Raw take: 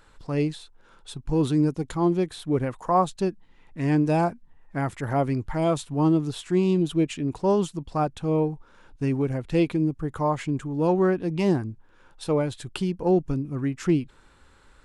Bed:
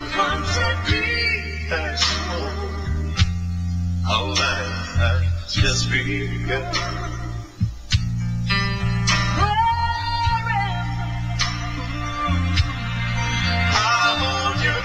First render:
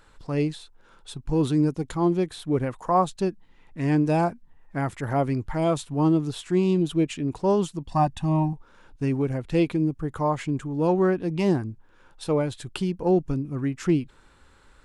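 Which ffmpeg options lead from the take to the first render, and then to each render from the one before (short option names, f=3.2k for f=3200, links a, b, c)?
-filter_complex "[0:a]asettb=1/sr,asplit=3[a][b][c];[a]atrim=end=7.894[d];[b]atrim=start=7.89:end=8.53,asetpts=PTS-STARTPTS,afade=t=in:d=0.004:c=qsin,afade=t=out:st=0.636:d=0.004:c=qsin,aecho=1:1:1.1:0.99,atrim=end_sample=28224[e];[c]atrim=start=8.526[f];[d][e]acrossfade=d=0.004:c1=hsin:c2=qsin[g];[g][f]acrossfade=d=0.004:c1=qsin:c2=hsin"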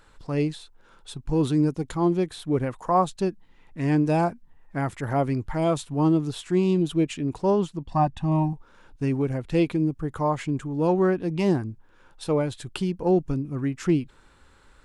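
-filter_complex "[0:a]asettb=1/sr,asplit=3[a][b][c];[a]atrim=end=7.504[d];[b]atrim=start=7.5:end=8.32,asetpts=PTS-STARTPTS,afade=t=in:d=0.004:c=qsin,afade=t=out:st=0.816:d=0.004:c=qsin,lowpass=f=3.1k:p=1[e];[c]atrim=start=8.316[f];[d][e]acrossfade=d=0.004:c1=hsin:c2=qsin[g];[g][f]acrossfade=d=0.004:c1=qsin:c2=hsin"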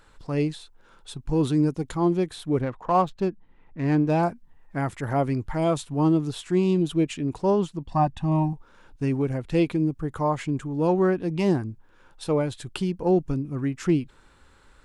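-filter_complex "[0:a]asettb=1/sr,asplit=3[a][b][c];[a]atrim=end=2.614[d];[b]atrim=start=2.61:end=4.23,asetpts=PTS-STARTPTS,afade=t=in:d=0.004:c=qsin,afade=t=out:st=1.616:d=0.004:c=qsin,adynamicsmooth=sensitivity=4:basefreq=2.3k[e];[c]atrim=start=4.226[f];[d][e]acrossfade=d=0.004:c1=hsin:c2=qsin[g];[g][f]acrossfade=d=0.004:c1=qsin:c2=hsin"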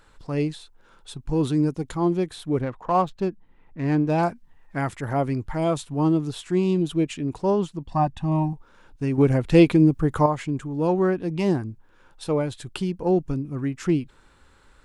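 -filter_complex "[0:a]asettb=1/sr,asplit=3[a][b][c];[a]atrim=end=4.184[d];[b]atrim=start=4.18:end=4.94,asetpts=PTS-STARTPTS,afade=t=in:d=0.004:c=qsin,afade=t=out:st=0.756:d=0.004:c=qsin,equalizer=f=3.7k:w=0.33:g=4.5[e];[c]atrim=start=4.936[f];[d][e]acrossfade=d=0.004:c1=hsin:c2=qsin[g];[g][f]acrossfade=d=0.004:c1=qsin:c2=hsin,asplit=3[h][i][j];[h]atrim=end=9.182[k];[i]atrim=start=9.178:end=10.262,asetpts=PTS-STARTPTS,volume=7.5dB[l];[j]atrim=start=10.258[m];[k][l]acrossfade=d=0.004:c1=hsin:c2=hsin[n];[n][m]acrossfade=d=0.004:c1=hsin:c2=hsin"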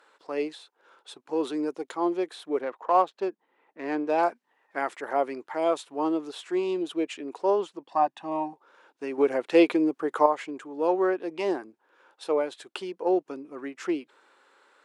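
-af "highpass=f=370:w=0.5412,highpass=f=370:w=1.3066,aemphasis=mode=reproduction:type=cd"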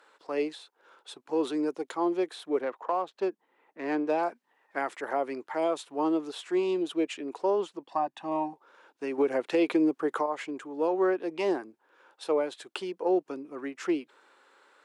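-filter_complex "[0:a]alimiter=limit=-15.5dB:level=0:latency=1:release=127,acrossover=split=390[a][b];[b]acompressor=threshold=-25dB:ratio=6[c];[a][c]amix=inputs=2:normalize=0"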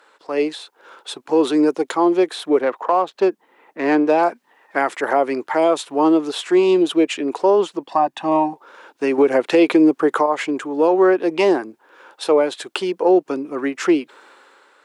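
-filter_complex "[0:a]dynaudnorm=f=110:g=9:m=7dB,asplit=2[a][b];[b]alimiter=limit=-16dB:level=0:latency=1:release=228,volume=2dB[c];[a][c]amix=inputs=2:normalize=0"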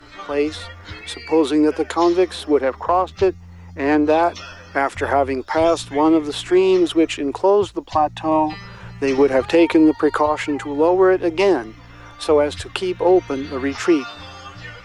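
-filter_complex "[1:a]volume=-15.5dB[a];[0:a][a]amix=inputs=2:normalize=0"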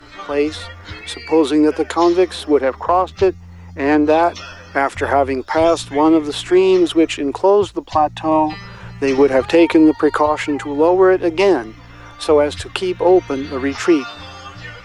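-af "volume=2.5dB"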